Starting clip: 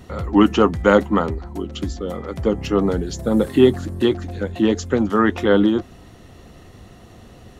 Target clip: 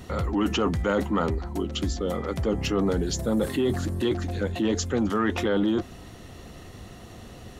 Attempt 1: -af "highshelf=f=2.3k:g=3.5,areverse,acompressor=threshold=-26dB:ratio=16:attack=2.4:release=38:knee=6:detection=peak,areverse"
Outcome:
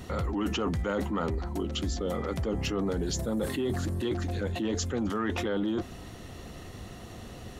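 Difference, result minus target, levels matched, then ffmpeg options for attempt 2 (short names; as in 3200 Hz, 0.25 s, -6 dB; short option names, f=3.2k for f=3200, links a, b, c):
compressor: peak gain reduction +6 dB
-af "highshelf=f=2.3k:g=3.5,areverse,acompressor=threshold=-19.5dB:ratio=16:attack=2.4:release=38:knee=6:detection=peak,areverse"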